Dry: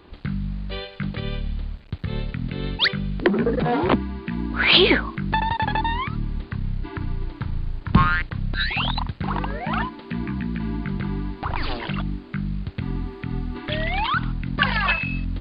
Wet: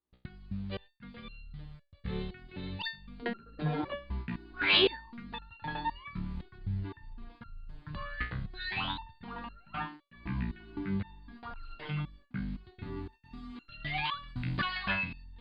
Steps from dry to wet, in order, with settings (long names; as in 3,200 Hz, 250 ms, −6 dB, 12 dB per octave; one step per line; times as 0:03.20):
noise gate −33 dBFS, range −36 dB
0:13.12–0:14.85: high-shelf EQ 2,800 Hz +10.5 dB
step-sequenced resonator 3.9 Hz 62–1,400 Hz